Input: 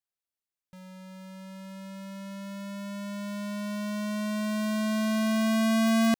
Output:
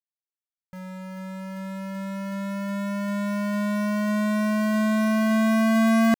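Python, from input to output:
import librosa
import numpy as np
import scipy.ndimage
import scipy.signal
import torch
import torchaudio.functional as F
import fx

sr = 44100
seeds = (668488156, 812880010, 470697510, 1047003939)

p1 = fx.high_shelf_res(x, sr, hz=2500.0, db=-6.0, q=1.5)
p2 = fx.rider(p1, sr, range_db=5, speed_s=2.0)
p3 = p1 + (p2 * 10.0 ** (0.0 / 20.0))
y = fx.quant_companded(p3, sr, bits=6)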